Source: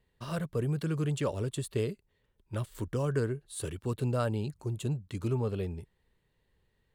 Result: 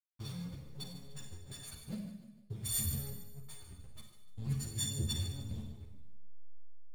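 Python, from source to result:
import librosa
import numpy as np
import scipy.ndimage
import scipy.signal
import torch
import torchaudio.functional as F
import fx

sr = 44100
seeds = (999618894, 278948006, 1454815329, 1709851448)

p1 = fx.freq_snap(x, sr, grid_st=4)
p2 = fx.peak_eq(p1, sr, hz=73.0, db=11.5, octaves=2.0)
p3 = fx.over_compress(p2, sr, threshold_db=-38.0, ratio=-1.0)
p4 = scipy.signal.sosfilt(scipy.signal.cheby1(5, 1.0, [300.0, 3400.0], 'bandstop', fs=sr, output='sos'), p3)
p5 = fx.cheby_harmonics(p4, sr, harmonics=(5, 6, 8), levels_db=(-16, -25, -31), full_scale_db=-20.5)
p6 = fx.tremolo_random(p5, sr, seeds[0], hz=1.6, depth_pct=80)
p7 = fx.backlash(p6, sr, play_db=-37.5)
p8 = p7 + fx.echo_feedback(p7, sr, ms=150, feedback_pct=40, wet_db=-13, dry=0)
p9 = fx.rev_schroeder(p8, sr, rt60_s=0.75, comb_ms=30, drr_db=3.0)
p10 = fx.ensemble(p9, sr)
y = p10 * 10.0 ** (1.0 / 20.0)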